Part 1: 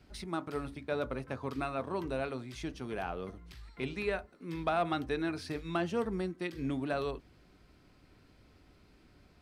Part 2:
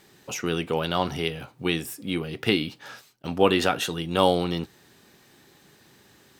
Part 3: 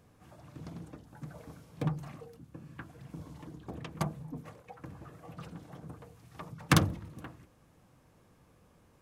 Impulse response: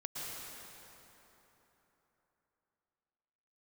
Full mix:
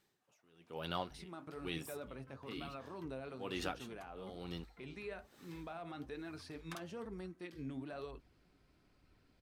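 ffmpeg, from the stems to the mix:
-filter_complex "[0:a]alimiter=level_in=5.5dB:limit=-24dB:level=0:latency=1:release=49,volume=-5.5dB,adelay=1000,volume=-4.5dB[a];[1:a]dynaudnorm=f=240:g=5:m=15.5dB,aeval=exprs='val(0)*pow(10,-27*(0.5-0.5*cos(2*PI*1.1*n/s))/20)':c=same,volume=-16dB[b];[2:a]highpass=650,volume=-18dB[c];[a][b][c]amix=inputs=3:normalize=0,flanger=delay=0.7:depth=7:regen=68:speed=1.1:shape=sinusoidal"

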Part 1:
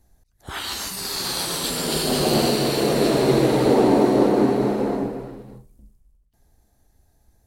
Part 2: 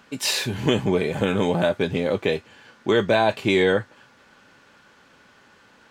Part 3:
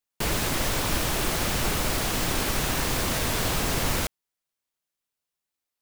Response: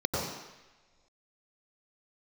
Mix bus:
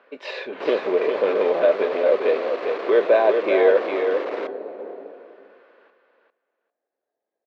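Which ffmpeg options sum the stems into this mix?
-filter_complex "[0:a]volume=-11.5dB,asplit=2[a][b];[b]volume=-11.5dB[c];[1:a]volume=1.5dB,asplit=2[d][e];[e]volume=-6dB[f];[2:a]equalizer=f=1.1k:t=o:w=0.77:g=3.5,aeval=exprs='clip(val(0),-1,0.0335)':c=same,adelay=400,volume=1.5dB[g];[c][f]amix=inputs=2:normalize=0,aecho=0:1:400|800|1200:1|0.15|0.0225[h];[a][d][g][h]amix=inputs=4:normalize=0,highpass=f=460:w=0.5412,highpass=f=460:w=1.3066,equalizer=f=540:t=q:w=4:g=3,equalizer=f=840:t=q:w=4:g=-8,equalizer=f=1.4k:t=q:w=4:g=-3,equalizer=f=3.1k:t=q:w=4:g=-5,lowpass=f=3.3k:w=0.5412,lowpass=f=3.3k:w=1.3066,tiltshelf=f=970:g=7.5"

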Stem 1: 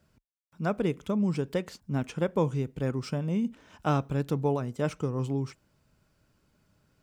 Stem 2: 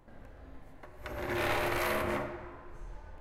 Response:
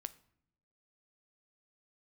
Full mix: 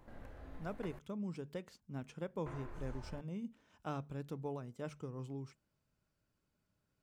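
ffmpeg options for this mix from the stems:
-filter_complex "[0:a]bandreject=f=73.19:t=h:w=4,bandreject=f=146.38:t=h:w=4,bandreject=f=219.57:t=h:w=4,volume=-14.5dB[a];[1:a]volume=-1dB,asplit=3[b][c][d];[b]atrim=end=0.99,asetpts=PTS-STARTPTS,afade=t=out:st=0.986:d=0.004:c=hsin[e];[c]atrim=start=0.99:end=2.46,asetpts=PTS-STARTPTS,volume=0[f];[d]atrim=start=2.46,asetpts=PTS-STARTPTS,afade=t=in:d=0.004:c=hsin[g];[e][f][g]concat=n=3:v=0:a=1[h];[a][h]amix=inputs=2:normalize=0"

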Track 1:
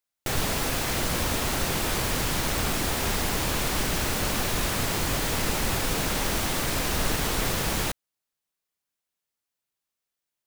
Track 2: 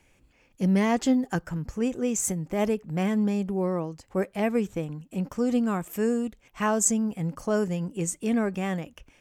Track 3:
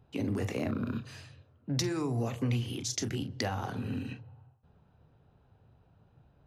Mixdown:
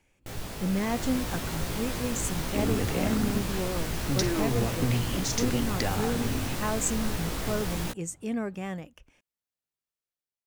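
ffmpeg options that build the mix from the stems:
-filter_complex "[0:a]flanger=delay=16.5:depth=2.3:speed=2.4,lowshelf=f=420:g=5.5,dynaudnorm=f=560:g=3:m=6dB,volume=-11.5dB[a];[1:a]volume=-6dB[b];[2:a]adelay=2400,volume=3dB[c];[a][b][c]amix=inputs=3:normalize=0"

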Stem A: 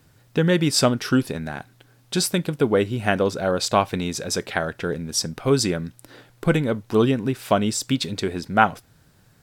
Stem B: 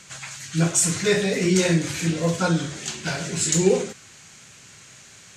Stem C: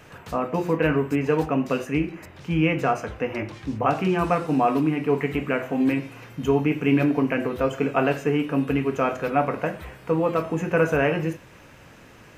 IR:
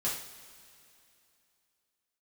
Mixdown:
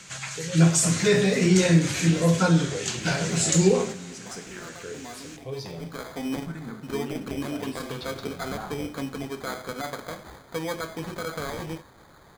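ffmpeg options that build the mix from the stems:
-filter_complex "[0:a]alimiter=limit=-12.5dB:level=0:latency=1,asplit=2[a][b];[b]afreqshift=0.4[c];[a][c]amix=inputs=2:normalize=1,volume=-16.5dB,asplit=2[d][e];[e]volume=-4dB[f];[1:a]acrossover=split=220[g][h];[h]acompressor=threshold=-25dB:ratio=1.5[i];[g][i]amix=inputs=2:normalize=0,volume=0.5dB,asplit=2[j][k];[k]volume=-15.5dB[l];[2:a]tiltshelf=f=1.2k:g=-6,alimiter=limit=-16.5dB:level=0:latency=1:release=151,acrusher=samples=16:mix=1:aa=0.000001,adelay=450,volume=-3.5dB,afade=t=in:st=5.54:d=0.58:silence=0.223872[m];[3:a]atrim=start_sample=2205[n];[f][l]amix=inputs=2:normalize=0[o];[o][n]afir=irnorm=-1:irlink=0[p];[d][j][m][p]amix=inputs=4:normalize=0,highshelf=f=9.6k:g=-3.5"

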